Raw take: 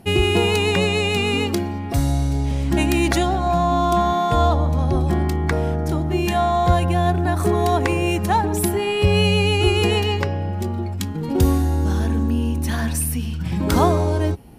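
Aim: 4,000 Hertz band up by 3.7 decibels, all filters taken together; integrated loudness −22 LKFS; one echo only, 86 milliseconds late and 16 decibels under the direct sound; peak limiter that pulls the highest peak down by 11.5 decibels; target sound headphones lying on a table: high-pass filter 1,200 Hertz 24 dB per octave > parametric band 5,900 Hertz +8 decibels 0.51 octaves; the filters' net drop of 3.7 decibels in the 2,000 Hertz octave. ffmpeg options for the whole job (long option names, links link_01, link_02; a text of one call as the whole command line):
ffmpeg -i in.wav -af "equalizer=frequency=2000:width_type=o:gain=-9,equalizer=frequency=4000:width_type=o:gain=8.5,alimiter=limit=-14.5dB:level=0:latency=1,highpass=frequency=1200:width=0.5412,highpass=frequency=1200:width=1.3066,equalizer=frequency=5900:width_type=o:width=0.51:gain=8,aecho=1:1:86:0.158,volume=8dB" out.wav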